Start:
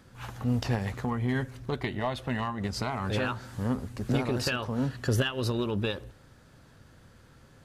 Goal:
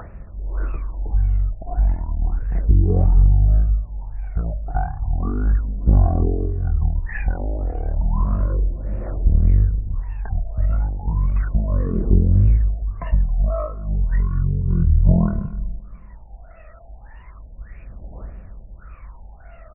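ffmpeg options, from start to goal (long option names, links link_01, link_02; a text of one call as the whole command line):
ffmpeg -i in.wav -filter_complex "[0:a]acrossover=split=2600[link_01][link_02];[link_02]acompressor=mode=upward:threshold=-43dB:ratio=2.5[link_03];[link_01][link_03]amix=inputs=2:normalize=0,equalizer=frequency=130:width=8:gain=10.5,acompressor=threshold=-28dB:ratio=6,aemphasis=mode=reproduction:type=50fm,asetrate=17067,aresample=44100,aphaser=in_gain=1:out_gain=1:delay=1.6:decay=0.79:speed=0.33:type=triangular,asplit=2[link_04][link_05];[link_05]aecho=0:1:272|544|816:0.0891|0.0321|0.0116[link_06];[link_04][link_06]amix=inputs=2:normalize=0,afftfilt=real='re*lt(b*sr/1024,880*pow(2900/880,0.5+0.5*sin(2*PI*1.7*pts/sr)))':imag='im*lt(b*sr/1024,880*pow(2900/880,0.5+0.5*sin(2*PI*1.7*pts/sr)))':win_size=1024:overlap=0.75,volume=5dB" out.wav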